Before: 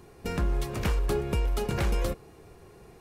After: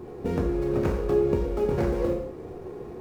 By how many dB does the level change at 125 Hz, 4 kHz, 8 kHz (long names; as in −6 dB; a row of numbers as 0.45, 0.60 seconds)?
0.0 dB, can't be measured, below −10 dB